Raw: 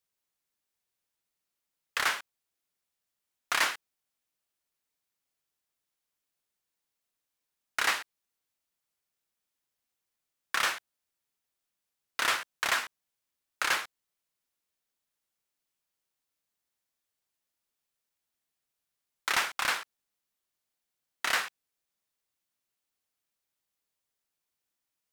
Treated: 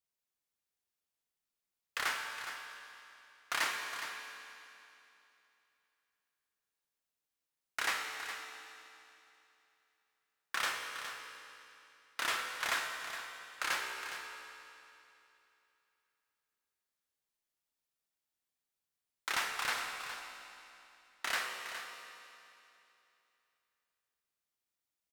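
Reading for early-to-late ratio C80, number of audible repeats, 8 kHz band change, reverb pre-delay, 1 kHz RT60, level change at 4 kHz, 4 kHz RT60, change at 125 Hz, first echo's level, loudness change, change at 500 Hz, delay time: 3.5 dB, 1, -5.0 dB, 16 ms, 2.9 s, -5.0 dB, 2.8 s, no reading, -10.5 dB, -7.5 dB, -4.5 dB, 414 ms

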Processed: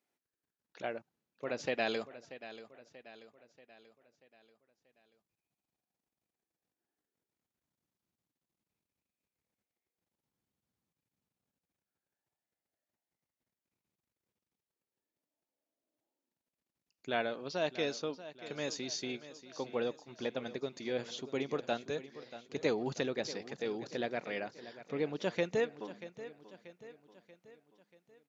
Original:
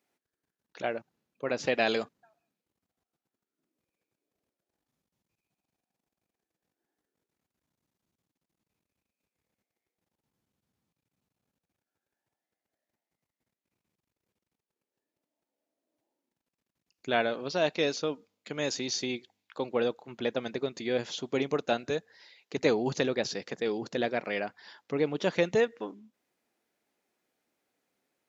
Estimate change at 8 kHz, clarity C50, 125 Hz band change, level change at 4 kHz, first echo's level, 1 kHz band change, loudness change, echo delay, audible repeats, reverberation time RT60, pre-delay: no reading, no reverb, -6.5 dB, -6.5 dB, -14.5 dB, -6.5 dB, -7.0 dB, 635 ms, 4, no reverb, no reverb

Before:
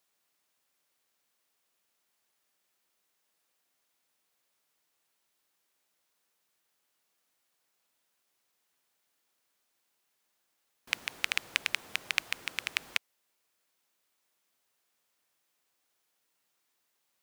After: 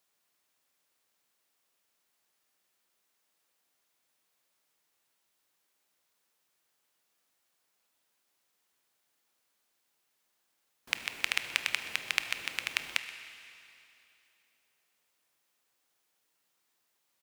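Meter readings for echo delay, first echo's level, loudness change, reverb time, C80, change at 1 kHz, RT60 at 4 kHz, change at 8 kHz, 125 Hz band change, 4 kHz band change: 127 ms, -19.0 dB, +0.5 dB, 2.8 s, 10.0 dB, +0.5 dB, 2.8 s, +0.5 dB, +1.0 dB, +0.5 dB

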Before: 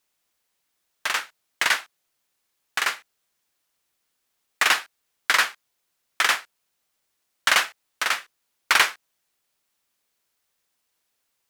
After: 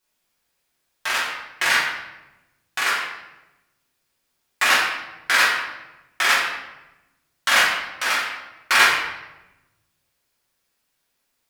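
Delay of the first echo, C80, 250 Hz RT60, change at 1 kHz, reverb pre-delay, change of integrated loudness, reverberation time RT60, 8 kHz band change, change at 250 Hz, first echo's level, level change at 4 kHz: no echo, 5.0 dB, 1.4 s, +4.0 dB, 5 ms, +3.0 dB, 1.0 s, +1.5 dB, +6.0 dB, no echo, +3.0 dB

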